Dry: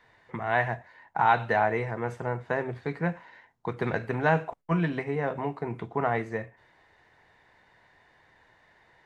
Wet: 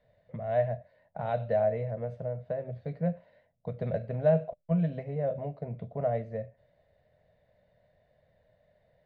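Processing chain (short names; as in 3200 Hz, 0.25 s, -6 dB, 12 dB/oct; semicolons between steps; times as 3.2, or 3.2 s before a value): EQ curve 190 Hz 0 dB, 350 Hz -18 dB, 600 Hz +8 dB, 870 Hz -21 dB, 1800 Hz -18 dB, 4200 Hz -13 dB, 7400 Hz -27 dB; 2.04–2.8 compressor 2:1, threshold -32 dBFS, peak gain reduction 4.5 dB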